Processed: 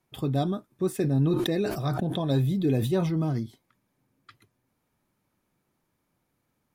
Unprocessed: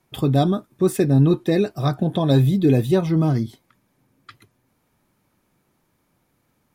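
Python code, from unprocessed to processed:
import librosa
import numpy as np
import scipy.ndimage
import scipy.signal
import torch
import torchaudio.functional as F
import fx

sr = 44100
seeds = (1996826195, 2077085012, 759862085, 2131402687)

y = fx.sustainer(x, sr, db_per_s=34.0, at=(1.03, 3.39), fade=0.02)
y = y * 10.0 ** (-8.5 / 20.0)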